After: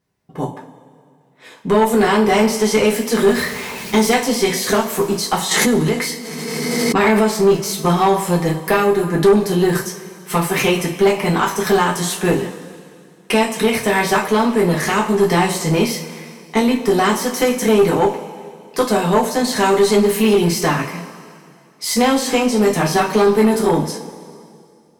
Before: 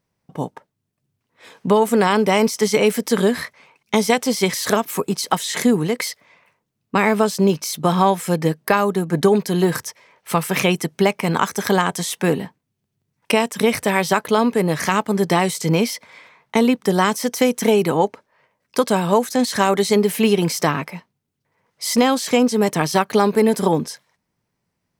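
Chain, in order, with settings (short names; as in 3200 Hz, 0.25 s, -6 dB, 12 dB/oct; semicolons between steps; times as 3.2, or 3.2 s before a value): 3.15–4.15 zero-crossing step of -27 dBFS; two-slope reverb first 0.3 s, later 2.3 s, from -18 dB, DRR -3.5 dB; tube stage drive 5 dB, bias 0.3; 5.51–7.28 backwards sustainer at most 22 dB/s; gain -1 dB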